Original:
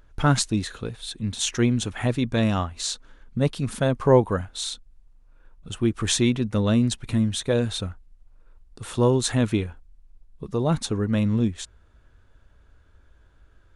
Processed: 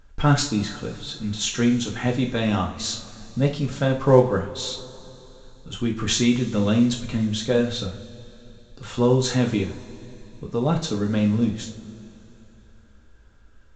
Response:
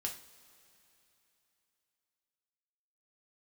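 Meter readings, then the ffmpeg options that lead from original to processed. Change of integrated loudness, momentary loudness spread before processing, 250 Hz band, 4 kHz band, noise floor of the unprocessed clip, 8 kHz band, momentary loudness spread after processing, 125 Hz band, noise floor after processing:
+1.0 dB, 13 LU, +2.0 dB, +1.5 dB, -56 dBFS, -0.5 dB, 17 LU, 0.0 dB, -51 dBFS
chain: -filter_complex "[1:a]atrim=start_sample=2205[s0];[0:a][s0]afir=irnorm=-1:irlink=0,volume=1.19" -ar 16000 -c:a pcm_alaw

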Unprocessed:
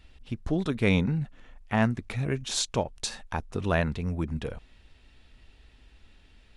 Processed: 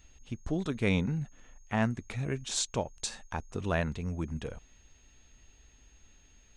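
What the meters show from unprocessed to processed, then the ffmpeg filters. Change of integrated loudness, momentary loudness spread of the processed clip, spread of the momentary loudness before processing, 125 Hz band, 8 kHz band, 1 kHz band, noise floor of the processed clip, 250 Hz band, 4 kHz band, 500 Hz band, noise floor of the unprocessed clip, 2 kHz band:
-4.5 dB, 13 LU, 13 LU, -4.5 dB, -1.5 dB, -4.5 dB, -61 dBFS, -4.5 dB, -4.5 dB, -4.5 dB, -58 dBFS, -4.5 dB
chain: -af "aexciter=amount=1.3:drive=4.3:freq=6500,aeval=exprs='val(0)+0.001*sin(2*PI*6500*n/s)':c=same,volume=0.596"

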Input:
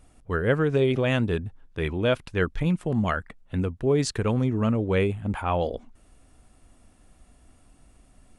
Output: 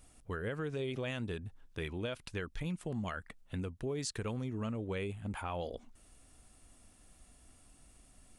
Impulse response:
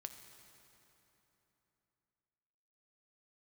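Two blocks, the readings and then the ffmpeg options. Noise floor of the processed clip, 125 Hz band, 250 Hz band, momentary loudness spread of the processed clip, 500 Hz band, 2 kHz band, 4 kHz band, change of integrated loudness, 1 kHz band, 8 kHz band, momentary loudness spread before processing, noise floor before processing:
-63 dBFS, -14.0 dB, -14.0 dB, 7 LU, -15.0 dB, -12.5 dB, -10.0 dB, -14.0 dB, -13.5 dB, -7.0 dB, 9 LU, -58 dBFS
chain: -af "highshelf=f=2900:g=10,alimiter=limit=0.168:level=0:latency=1:release=96,acompressor=threshold=0.0224:ratio=2,volume=0.473"

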